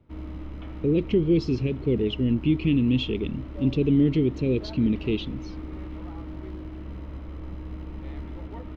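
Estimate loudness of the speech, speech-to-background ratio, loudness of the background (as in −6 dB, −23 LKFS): −24.5 LKFS, 14.0 dB, −38.5 LKFS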